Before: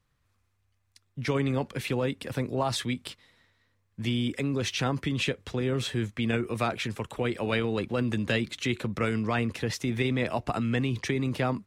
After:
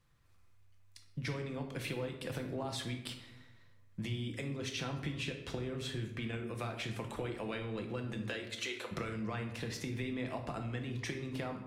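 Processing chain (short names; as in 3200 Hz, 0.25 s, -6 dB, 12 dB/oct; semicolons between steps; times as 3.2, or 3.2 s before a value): 8.21–8.91 HPF 230 Hz -> 500 Hz 24 dB/oct; compressor 12:1, threshold -37 dBFS, peak gain reduction 15.5 dB; reverb RT60 0.85 s, pre-delay 6 ms, DRR 3.5 dB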